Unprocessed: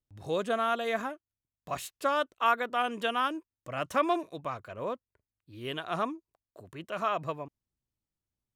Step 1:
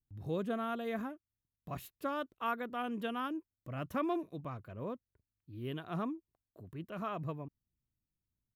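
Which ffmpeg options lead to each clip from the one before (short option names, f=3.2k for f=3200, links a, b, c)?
-af "firequalizer=gain_entry='entry(180,0);entry(570,-12);entry(8400,-20);entry(12000,-6)':delay=0.05:min_phase=1,volume=2.5dB"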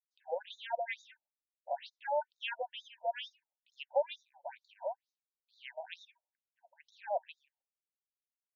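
-af "agate=range=-33dB:threshold=-59dB:ratio=3:detection=peak,asuperstop=centerf=1200:order=12:qfactor=2,afftfilt=real='re*between(b*sr/1024,720*pow(5100/720,0.5+0.5*sin(2*PI*2.2*pts/sr))/1.41,720*pow(5100/720,0.5+0.5*sin(2*PI*2.2*pts/sr))*1.41)':imag='im*between(b*sr/1024,720*pow(5100/720,0.5+0.5*sin(2*PI*2.2*pts/sr))/1.41,720*pow(5100/720,0.5+0.5*sin(2*PI*2.2*pts/sr))*1.41)':win_size=1024:overlap=0.75,volume=11dB"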